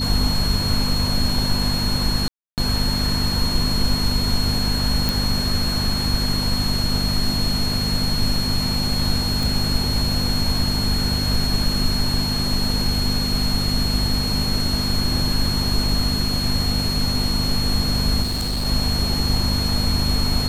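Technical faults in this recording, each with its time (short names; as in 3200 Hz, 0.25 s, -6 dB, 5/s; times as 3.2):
hum 50 Hz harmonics 5 -25 dBFS
tone 4300 Hz -24 dBFS
2.28–2.58 gap 0.298 s
5.09 pop
9.43 pop
18.22–18.66 clipped -20 dBFS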